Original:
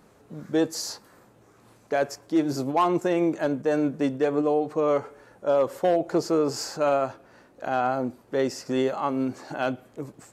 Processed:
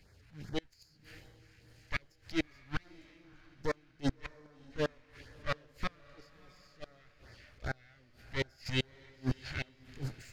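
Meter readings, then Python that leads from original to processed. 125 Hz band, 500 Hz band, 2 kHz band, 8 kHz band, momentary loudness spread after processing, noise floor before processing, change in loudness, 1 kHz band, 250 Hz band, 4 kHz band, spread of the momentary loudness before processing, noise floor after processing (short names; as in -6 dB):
-4.0 dB, -19.5 dB, -5.0 dB, -18.0 dB, 21 LU, -57 dBFS, -13.5 dB, -19.5 dB, -15.5 dB, -5.5 dB, 9 LU, -65 dBFS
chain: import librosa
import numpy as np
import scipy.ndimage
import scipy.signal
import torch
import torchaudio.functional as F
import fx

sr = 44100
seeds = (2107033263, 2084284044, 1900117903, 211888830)

y = fx.lower_of_two(x, sr, delay_ms=0.43)
y = fx.band_shelf(y, sr, hz=2900.0, db=11.5, octaves=2.3)
y = fx.transient(y, sr, attack_db=-10, sustain_db=6)
y = fx.low_shelf_res(y, sr, hz=130.0, db=13.0, q=1.5)
y = fx.gate_flip(y, sr, shuts_db=-16.0, range_db=-30)
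y = fx.filter_lfo_notch(y, sr, shape='sine', hz=2.5, low_hz=360.0, high_hz=2900.0, q=0.8)
y = fx.echo_diffused(y, sr, ms=657, feedback_pct=42, wet_db=-14.0)
y = fx.upward_expand(y, sr, threshold_db=-42.0, expansion=1.5)
y = y * 10.0 ** (-1.0 / 20.0)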